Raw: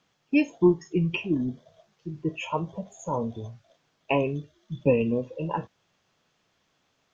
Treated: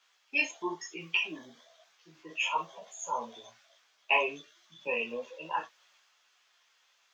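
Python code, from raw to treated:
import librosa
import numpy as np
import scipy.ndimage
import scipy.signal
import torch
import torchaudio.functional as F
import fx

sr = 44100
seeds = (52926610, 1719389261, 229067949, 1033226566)

y = scipy.signal.sosfilt(scipy.signal.butter(2, 1200.0, 'highpass', fs=sr, output='sos'), x)
y = fx.transient(y, sr, attack_db=-1, sustain_db=3)
y = fx.doubler(y, sr, ms=25.0, db=-11)
y = fx.chorus_voices(y, sr, voices=6, hz=1.0, base_ms=15, depth_ms=3.0, mix_pct=50)
y = y * librosa.db_to_amplitude(7.5)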